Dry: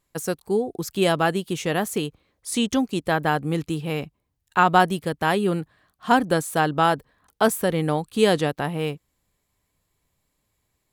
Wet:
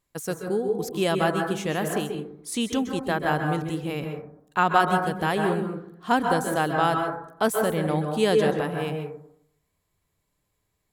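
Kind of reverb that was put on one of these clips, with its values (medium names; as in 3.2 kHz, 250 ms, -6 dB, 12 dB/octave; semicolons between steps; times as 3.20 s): plate-style reverb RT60 0.69 s, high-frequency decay 0.25×, pre-delay 120 ms, DRR 3 dB; trim -4 dB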